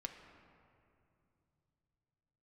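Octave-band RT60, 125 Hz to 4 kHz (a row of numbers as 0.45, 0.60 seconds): 4.9, 3.1, 2.9, 2.5, 2.1, 1.5 seconds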